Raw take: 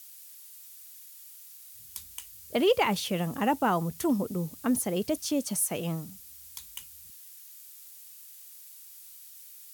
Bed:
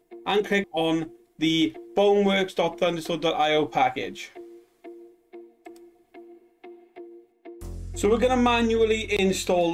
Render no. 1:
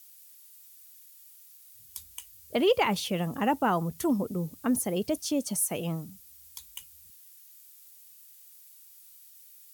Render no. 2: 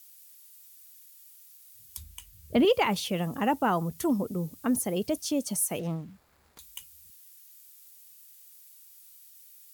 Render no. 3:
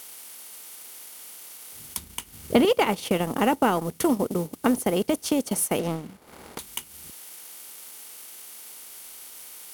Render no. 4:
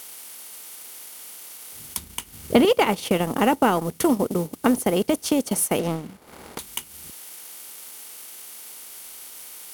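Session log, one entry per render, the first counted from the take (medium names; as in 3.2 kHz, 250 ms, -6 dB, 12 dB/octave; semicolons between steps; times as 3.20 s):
noise reduction 6 dB, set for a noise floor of -49 dBFS
1.97–2.65 s: tone controls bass +14 dB, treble -4 dB; 5.79–6.59 s: median filter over 15 samples
spectral levelling over time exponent 0.6; transient shaper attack +4 dB, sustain -12 dB
trim +2.5 dB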